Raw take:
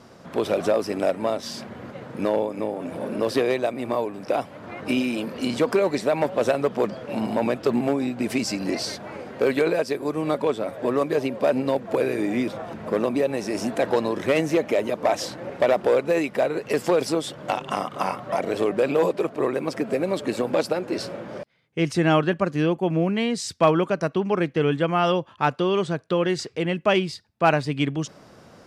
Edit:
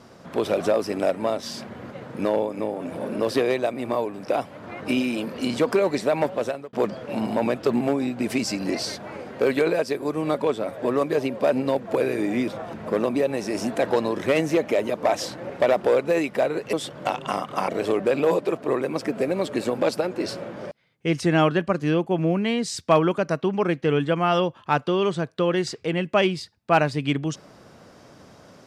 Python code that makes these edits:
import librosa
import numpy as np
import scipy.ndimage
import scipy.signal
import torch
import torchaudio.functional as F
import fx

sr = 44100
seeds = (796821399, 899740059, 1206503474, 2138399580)

y = fx.edit(x, sr, fx.fade_out_span(start_s=6.24, length_s=0.49),
    fx.cut(start_s=16.73, length_s=0.43),
    fx.cut(start_s=18.11, length_s=0.29), tone=tone)